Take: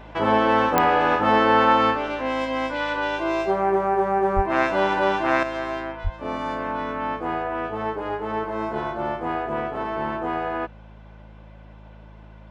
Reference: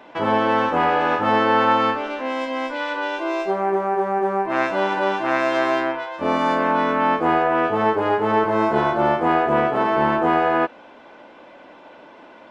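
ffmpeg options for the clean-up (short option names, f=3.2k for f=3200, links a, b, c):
-filter_complex "[0:a]adeclick=t=4,bandreject=f=53.4:t=h:w=4,bandreject=f=106.8:t=h:w=4,bandreject=f=160.2:t=h:w=4,bandreject=f=213.6:t=h:w=4,asplit=3[a][b][c];[a]afade=t=out:st=4.35:d=0.02[d];[b]highpass=f=140:w=0.5412,highpass=f=140:w=1.3066,afade=t=in:st=4.35:d=0.02,afade=t=out:st=4.47:d=0.02[e];[c]afade=t=in:st=4.47:d=0.02[f];[d][e][f]amix=inputs=3:normalize=0,asplit=3[g][h][i];[g]afade=t=out:st=6.03:d=0.02[j];[h]highpass=f=140:w=0.5412,highpass=f=140:w=1.3066,afade=t=in:st=6.03:d=0.02,afade=t=out:st=6.15:d=0.02[k];[i]afade=t=in:st=6.15:d=0.02[l];[j][k][l]amix=inputs=3:normalize=0,asetnsamples=n=441:p=0,asendcmd='5.43 volume volume 8.5dB',volume=0dB"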